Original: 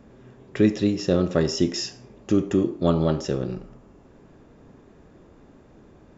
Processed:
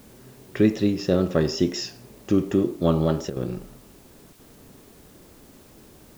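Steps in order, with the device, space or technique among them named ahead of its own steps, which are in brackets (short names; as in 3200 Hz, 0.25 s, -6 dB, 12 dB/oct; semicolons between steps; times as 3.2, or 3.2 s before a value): worn cassette (LPF 6300 Hz; wow and flutter; level dips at 3.3/4.33, 63 ms -10 dB; white noise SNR 30 dB)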